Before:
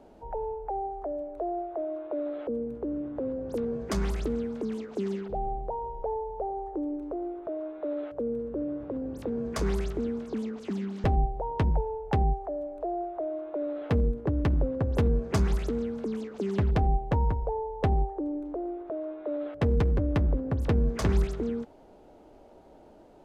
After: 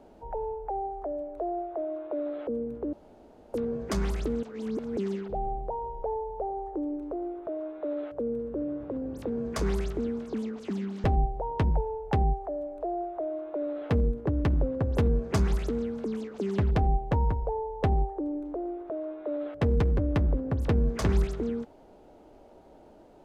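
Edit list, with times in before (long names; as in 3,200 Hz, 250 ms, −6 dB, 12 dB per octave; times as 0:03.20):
0:02.93–0:03.54: fill with room tone
0:04.43–0:04.97: reverse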